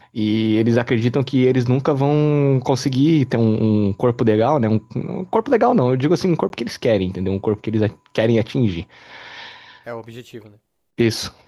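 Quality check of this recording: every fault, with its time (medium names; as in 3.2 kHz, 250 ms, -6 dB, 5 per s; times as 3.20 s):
6.49–6.50 s: dropout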